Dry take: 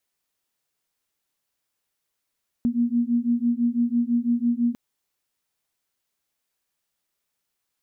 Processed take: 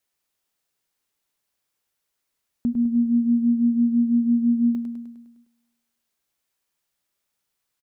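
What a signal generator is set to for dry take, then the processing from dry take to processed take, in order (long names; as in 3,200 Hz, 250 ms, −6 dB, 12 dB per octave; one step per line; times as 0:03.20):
two tones that beat 235 Hz, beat 6 Hz, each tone −22.5 dBFS 2.10 s
on a send: repeating echo 102 ms, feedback 59%, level −8.5 dB
on the sum: four-comb reverb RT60 1.1 s, combs from 26 ms, DRR 20 dB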